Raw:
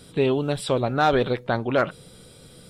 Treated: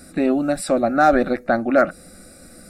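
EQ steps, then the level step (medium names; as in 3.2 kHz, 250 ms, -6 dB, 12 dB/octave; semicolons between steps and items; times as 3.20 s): dynamic bell 2.2 kHz, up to -4 dB, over -34 dBFS, Q 0.95; static phaser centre 650 Hz, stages 8; +8.0 dB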